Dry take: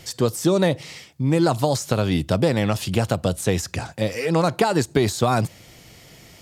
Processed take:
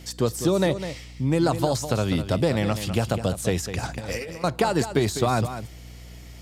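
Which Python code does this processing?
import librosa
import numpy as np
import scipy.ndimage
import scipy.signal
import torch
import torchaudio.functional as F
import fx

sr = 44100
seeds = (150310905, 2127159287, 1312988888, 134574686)

y = fx.add_hum(x, sr, base_hz=60, snr_db=19)
y = fx.over_compress(y, sr, threshold_db=-31.0, ratio=-1.0, at=(3.83, 4.44))
y = y + 10.0 ** (-10.5 / 20.0) * np.pad(y, (int(202 * sr / 1000.0), 0))[:len(y)]
y = y * librosa.db_to_amplitude(-3.0)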